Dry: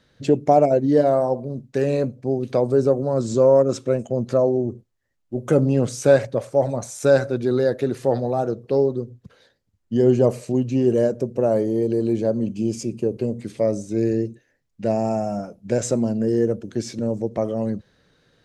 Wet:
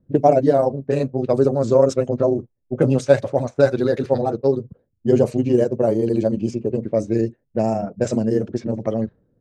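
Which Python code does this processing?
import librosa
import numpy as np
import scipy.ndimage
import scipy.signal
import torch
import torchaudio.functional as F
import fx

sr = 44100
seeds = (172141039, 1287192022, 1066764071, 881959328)

y = fx.env_lowpass(x, sr, base_hz=320.0, full_db=-16.5)
y = fx.stretch_grains(y, sr, factor=0.51, grain_ms=75.0)
y = y * 10.0 ** (3.0 / 20.0)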